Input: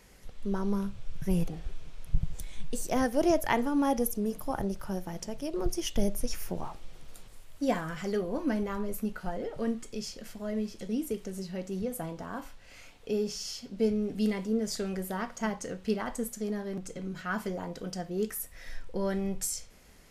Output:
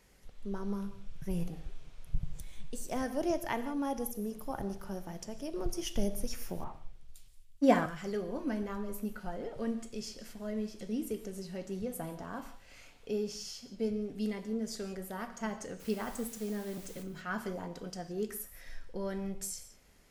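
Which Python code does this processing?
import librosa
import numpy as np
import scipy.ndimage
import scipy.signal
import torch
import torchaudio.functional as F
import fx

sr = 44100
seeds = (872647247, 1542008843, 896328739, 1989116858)

y = fx.rider(x, sr, range_db=3, speed_s=2.0)
y = fx.quant_dither(y, sr, seeds[0], bits=8, dither='triangular', at=(15.79, 17.02), fade=0.02)
y = fx.rev_gated(y, sr, seeds[1], gate_ms=200, shape='flat', drr_db=11.0)
y = fx.band_widen(y, sr, depth_pct=100, at=(6.64, 7.86))
y = y * librosa.db_to_amplitude(-6.0)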